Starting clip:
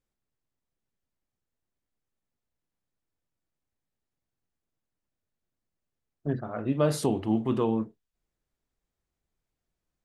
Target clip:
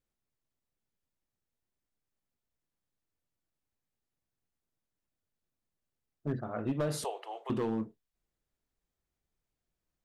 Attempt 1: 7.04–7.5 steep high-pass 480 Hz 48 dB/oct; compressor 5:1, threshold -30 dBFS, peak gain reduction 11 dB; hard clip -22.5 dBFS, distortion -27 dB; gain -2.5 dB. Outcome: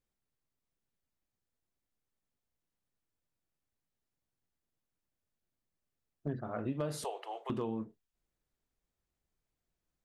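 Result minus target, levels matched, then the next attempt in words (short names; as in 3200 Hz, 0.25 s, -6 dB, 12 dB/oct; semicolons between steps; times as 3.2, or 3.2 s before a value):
compressor: peak gain reduction +5 dB
7.04–7.5 steep high-pass 480 Hz 48 dB/oct; compressor 5:1, threshold -23.5 dBFS, peak gain reduction 5.5 dB; hard clip -22.5 dBFS, distortion -16 dB; gain -2.5 dB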